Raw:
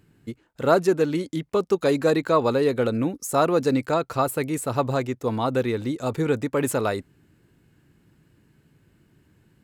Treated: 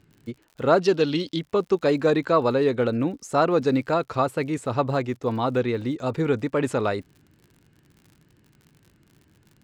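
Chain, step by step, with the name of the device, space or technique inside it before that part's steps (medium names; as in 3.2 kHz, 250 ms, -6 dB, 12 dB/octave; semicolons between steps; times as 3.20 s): lo-fi chain (low-pass 5.1 kHz 12 dB/octave; wow and flutter; crackle 63 per s -42 dBFS); 0.81–1.39 s: high-order bell 3.9 kHz +11.5 dB 1.2 oct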